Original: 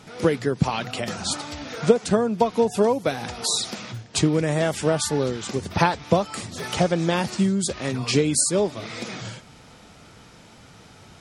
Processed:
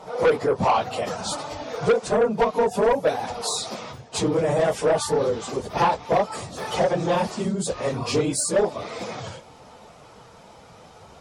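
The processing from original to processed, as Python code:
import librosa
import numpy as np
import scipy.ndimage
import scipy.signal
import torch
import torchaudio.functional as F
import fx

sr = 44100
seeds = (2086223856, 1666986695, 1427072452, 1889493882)

y = fx.phase_scramble(x, sr, seeds[0], window_ms=50)
y = fx.band_shelf(y, sr, hz=710.0, db=fx.steps((0.0, 15.5), (0.78, 9.0)), octaves=1.7)
y = 10.0 ** (-10.5 / 20.0) * np.tanh(y / 10.0 ** (-10.5 / 20.0))
y = y * 10.0 ** (-3.0 / 20.0)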